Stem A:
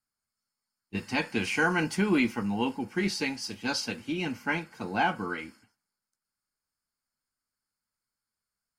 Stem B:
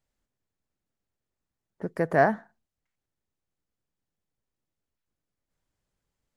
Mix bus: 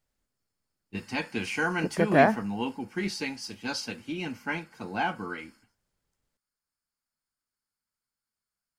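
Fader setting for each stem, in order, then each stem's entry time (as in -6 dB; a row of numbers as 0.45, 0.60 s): -2.5, +0.5 dB; 0.00, 0.00 s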